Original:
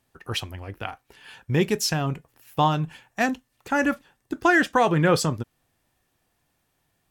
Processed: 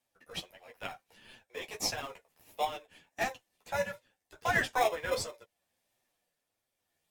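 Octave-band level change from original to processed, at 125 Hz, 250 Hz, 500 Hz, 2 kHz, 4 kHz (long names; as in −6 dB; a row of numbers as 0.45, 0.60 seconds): −22.0, −23.0, −10.0, −9.5, −8.0 decibels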